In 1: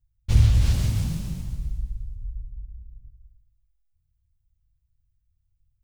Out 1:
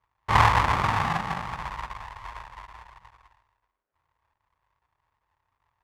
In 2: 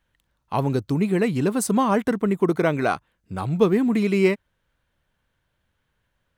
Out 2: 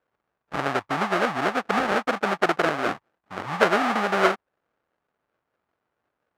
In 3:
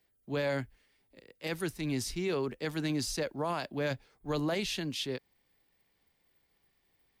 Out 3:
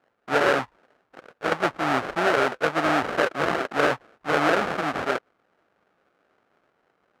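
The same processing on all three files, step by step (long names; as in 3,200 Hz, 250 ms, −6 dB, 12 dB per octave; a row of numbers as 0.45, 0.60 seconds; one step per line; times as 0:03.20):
treble cut that deepens with the level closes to 1,000 Hz, closed at −20.5 dBFS
sample-rate reduction 1,000 Hz, jitter 20%
resonant band-pass 1,200 Hz, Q 1.1
loudness normalisation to −24 LKFS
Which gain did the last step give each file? +14.5, +6.0, +18.5 decibels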